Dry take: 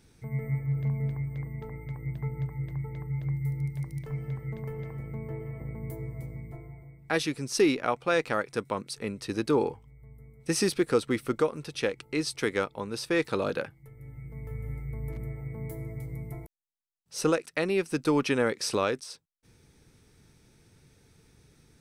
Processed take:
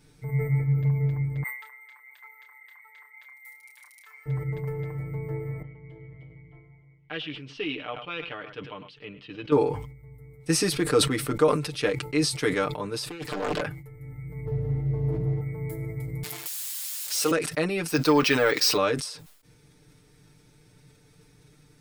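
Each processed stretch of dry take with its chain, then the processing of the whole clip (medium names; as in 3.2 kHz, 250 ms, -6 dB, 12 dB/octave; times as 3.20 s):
1.43–4.26 s: high-pass 1.2 kHz 24 dB/octave + band-stop 5.1 kHz, Q 27 + doubling 30 ms -6.5 dB
5.62–9.52 s: four-pole ladder low-pass 3.2 kHz, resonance 80% + delay 104 ms -18 dB
13.06–13.61 s: compressor with a negative ratio -31 dBFS, ratio -0.5 + loudspeaker Doppler distortion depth 0.98 ms
14.45–15.41 s: low-pass 1.2 kHz 6 dB/octave + comb 6.5 ms, depth 95% + waveshaping leveller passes 1
16.23–17.31 s: zero-crossing glitches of -22.5 dBFS + frequency weighting A
17.88–18.77 s: overdrive pedal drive 10 dB, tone 5.7 kHz, clips at -13.5 dBFS + peaking EQ 5 kHz +6 dB 1 oct + careless resampling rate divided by 2×, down none, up hold
whole clip: band-stop 6 kHz, Q 20; comb 6.7 ms, depth 86%; decay stretcher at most 77 dB/s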